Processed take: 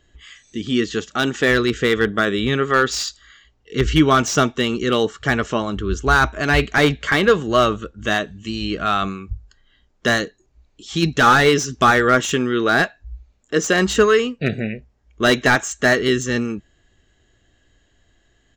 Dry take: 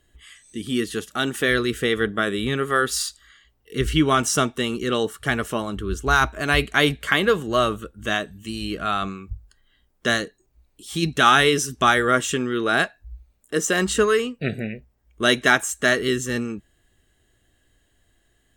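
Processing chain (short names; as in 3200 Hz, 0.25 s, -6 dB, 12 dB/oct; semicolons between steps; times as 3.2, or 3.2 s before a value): downsampling 16000 Hz; slew limiter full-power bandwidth 300 Hz; gain +4.5 dB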